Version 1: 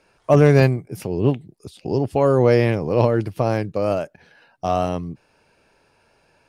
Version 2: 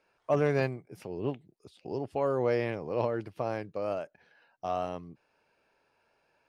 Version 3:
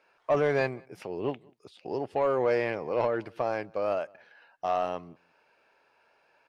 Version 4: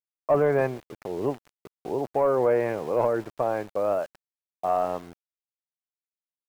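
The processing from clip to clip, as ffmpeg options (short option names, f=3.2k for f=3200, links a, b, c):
-af "lowpass=f=3.1k:p=1,lowshelf=f=270:g=-11,volume=-9dB"
-filter_complex "[0:a]asplit=2[a][b];[b]highpass=f=720:p=1,volume=13dB,asoftclip=type=tanh:threshold=-14.5dB[c];[a][c]amix=inputs=2:normalize=0,lowpass=f=3.1k:p=1,volume=-6dB,asplit=2[d][e];[e]adelay=186.6,volume=-28dB,highshelf=f=4k:g=-4.2[f];[d][f]amix=inputs=2:normalize=0"
-af "lowpass=1.4k,aeval=exprs='val(0)*gte(abs(val(0)),0.00501)':c=same,volume=4dB"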